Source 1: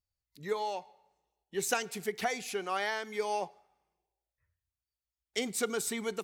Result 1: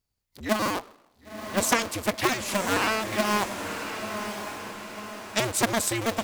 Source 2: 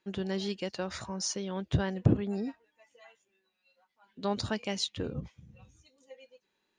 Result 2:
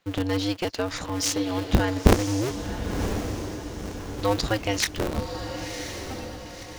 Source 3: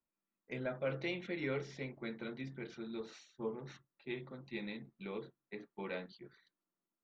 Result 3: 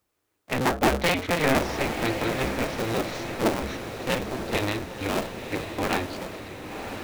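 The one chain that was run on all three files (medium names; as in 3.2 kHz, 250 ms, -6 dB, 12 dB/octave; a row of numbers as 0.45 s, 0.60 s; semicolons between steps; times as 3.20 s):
cycle switcher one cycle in 2, inverted; echo that smears into a reverb 1028 ms, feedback 50%, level -7.5 dB; normalise loudness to -27 LUFS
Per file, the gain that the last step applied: +7.5 dB, +7.5 dB, +15.5 dB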